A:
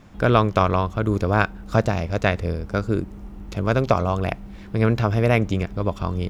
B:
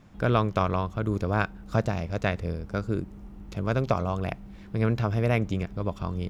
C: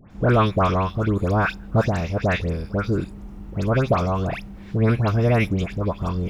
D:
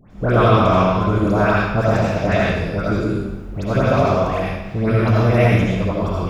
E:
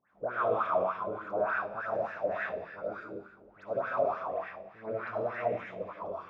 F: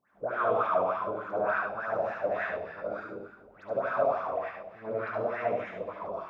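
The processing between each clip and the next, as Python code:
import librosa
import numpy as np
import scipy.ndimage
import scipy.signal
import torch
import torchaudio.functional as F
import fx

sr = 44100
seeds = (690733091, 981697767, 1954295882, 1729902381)

y1 = fx.peak_eq(x, sr, hz=150.0, db=3.5, octaves=0.94)
y1 = y1 * librosa.db_to_amplitude(-7.0)
y2 = fx.dispersion(y1, sr, late='highs', ms=107.0, hz=1900.0)
y2 = y2 * librosa.db_to_amplitude(6.0)
y3 = fx.rev_freeverb(y2, sr, rt60_s=1.1, hf_ratio=0.9, predelay_ms=40, drr_db=-5.0)
y3 = y3 * librosa.db_to_amplitude(-1.0)
y4 = fx.wah_lfo(y3, sr, hz=3.4, low_hz=520.0, high_hz=1700.0, q=4.3)
y4 = y4 * librosa.db_to_amplitude(-6.0)
y5 = y4 + 10.0 ** (-4.5 / 20.0) * np.pad(y4, (int(72 * sr / 1000.0), 0))[:len(y4)]
y5 = y5 * librosa.db_to_amplitude(1.0)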